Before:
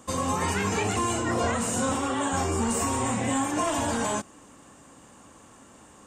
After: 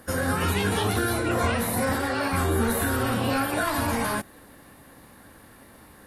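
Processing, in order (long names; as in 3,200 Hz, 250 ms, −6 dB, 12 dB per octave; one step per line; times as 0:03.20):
low-shelf EQ 110 Hz +10.5 dB
formants moved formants +6 semitones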